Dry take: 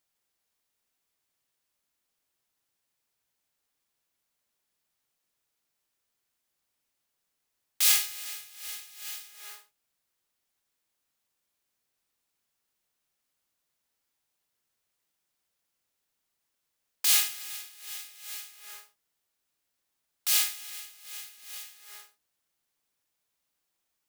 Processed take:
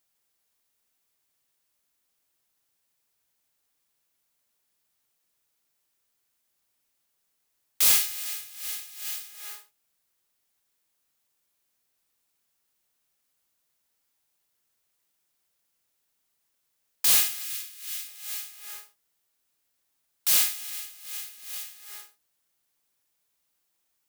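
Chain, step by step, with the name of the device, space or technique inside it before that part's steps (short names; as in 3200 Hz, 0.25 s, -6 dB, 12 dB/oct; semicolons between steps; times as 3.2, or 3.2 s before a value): saturation between pre-emphasis and de-emphasis (high shelf 3700 Hz +7.5 dB; soft clip -12 dBFS, distortion -13 dB; high shelf 3700 Hz -7.5 dB); 17.44–18.08 HPF 1400 Hz 12 dB/oct; high shelf 8100 Hz +5 dB; gain +2 dB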